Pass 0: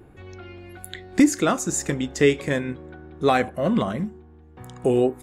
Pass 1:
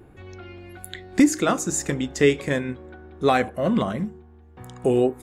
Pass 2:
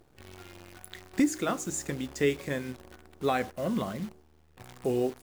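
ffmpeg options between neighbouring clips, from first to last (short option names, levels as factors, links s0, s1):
-af "bandreject=f=156:t=h:w=4,bandreject=f=312:t=h:w=4,bandreject=f=468:t=h:w=4"
-af "acrusher=bits=7:dc=4:mix=0:aa=0.000001,volume=0.376"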